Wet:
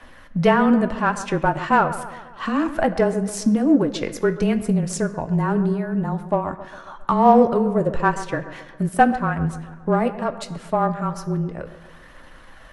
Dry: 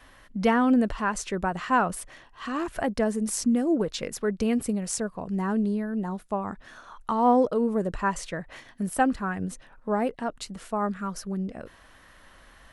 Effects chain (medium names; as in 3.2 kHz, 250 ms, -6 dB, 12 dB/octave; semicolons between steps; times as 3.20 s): treble shelf 4 kHz -7.5 dB; transient shaper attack +2 dB, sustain -4 dB; frequency shift -23 Hz; phaser 0.41 Hz, delay 4.2 ms, feedback 25%; in parallel at -11.5 dB: saturation -23 dBFS, distortion -8 dB; on the sum: feedback echo behind a low-pass 135 ms, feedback 53%, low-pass 1.9 kHz, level -13.5 dB; on a send at -9.5 dB: reverberation RT60 1.0 s, pre-delay 3 ms; on the sum: trim +5 dB